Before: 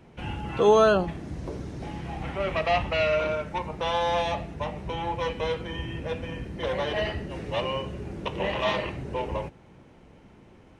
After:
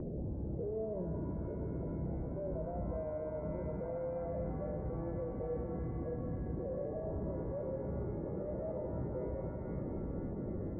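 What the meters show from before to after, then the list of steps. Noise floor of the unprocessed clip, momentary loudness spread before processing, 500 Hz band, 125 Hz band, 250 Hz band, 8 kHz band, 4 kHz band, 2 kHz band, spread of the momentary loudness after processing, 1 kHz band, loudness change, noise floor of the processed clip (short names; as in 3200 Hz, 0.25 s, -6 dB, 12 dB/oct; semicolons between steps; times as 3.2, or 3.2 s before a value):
-53 dBFS, 13 LU, -12.0 dB, -4.5 dB, -5.5 dB, n/a, under -40 dB, -30.0 dB, 2 LU, -21.5 dB, -12.0 dB, -41 dBFS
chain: Chebyshev low-pass 610 Hz, order 5; upward compressor, threshold -36 dBFS; limiter -42.5 dBFS, peak gain reduction 31.5 dB; shimmer reverb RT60 3.9 s, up +7 st, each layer -8 dB, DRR 5.5 dB; gain +8.5 dB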